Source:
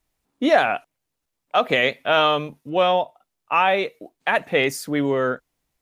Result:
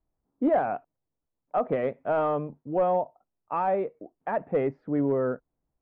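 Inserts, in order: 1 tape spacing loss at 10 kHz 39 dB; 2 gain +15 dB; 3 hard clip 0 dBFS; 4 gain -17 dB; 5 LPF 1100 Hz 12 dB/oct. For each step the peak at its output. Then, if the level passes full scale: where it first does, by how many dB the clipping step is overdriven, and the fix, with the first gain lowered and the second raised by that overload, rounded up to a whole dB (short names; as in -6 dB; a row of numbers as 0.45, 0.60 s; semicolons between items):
-9.0, +6.0, 0.0, -17.0, -16.5 dBFS; step 2, 6.0 dB; step 2 +9 dB, step 4 -11 dB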